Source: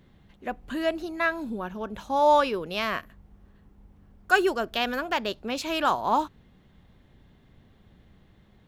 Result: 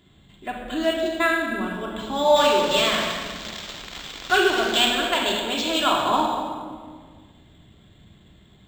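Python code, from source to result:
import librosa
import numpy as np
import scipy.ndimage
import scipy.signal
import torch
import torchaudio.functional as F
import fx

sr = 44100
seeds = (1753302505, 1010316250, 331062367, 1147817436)

y = fx.crossing_spikes(x, sr, level_db=-21.5, at=(2.36, 4.87))
y = fx.highpass(y, sr, hz=58.0, slope=6)
y = fx.peak_eq(y, sr, hz=3500.0, db=14.0, octaves=0.63)
y = y + 10.0 ** (-13.5 / 20.0) * np.pad(y, (int(227 * sr / 1000.0), 0))[:len(y)]
y = fx.room_shoebox(y, sr, seeds[0], volume_m3=2300.0, walls='mixed', distance_m=3.1)
y = np.interp(np.arange(len(y)), np.arange(len(y))[::4], y[::4])
y = y * librosa.db_to_amplitude(-1.5)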